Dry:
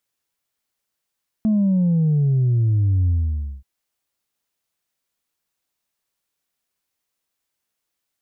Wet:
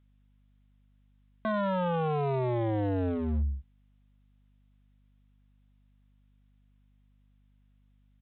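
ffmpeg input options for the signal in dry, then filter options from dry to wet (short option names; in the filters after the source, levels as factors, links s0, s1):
-f lavfi -i "aevalsrc='0.178*clip((2.18-t)/0.55,0,1)*tanh(1.12*sin(2*PI*220*2.18/log(65/220)*(exp(log(65/220)*t/2.18)-1)))/tanh(1.12)':d=2.18:s=44100"
-af "aresample=8000,aeval=exprs='0.0631*(abs(mod(val(0)/0.0631+3,4)-2)-1)':c=same,aresample=44100,aeval=exprs='val(0)+0.000708*(sin(2*PI*50*n/s)+sin(2*PI*2*50*n/s)/2+sin(2*PI*3*50*n/s)/3+sin(2*PI*4*50*n/s)/4+sin(2*PI*5*50*n/s)/5)':c=same"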